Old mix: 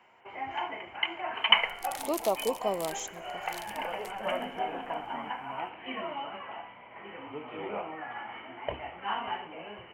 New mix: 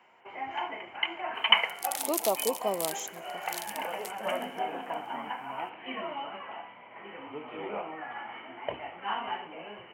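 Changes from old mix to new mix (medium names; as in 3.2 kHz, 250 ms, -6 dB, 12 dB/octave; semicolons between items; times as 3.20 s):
second sound: add tilt EQ +2.5 dB/octave; master: add high-pass 140 Hz 12 dB/octave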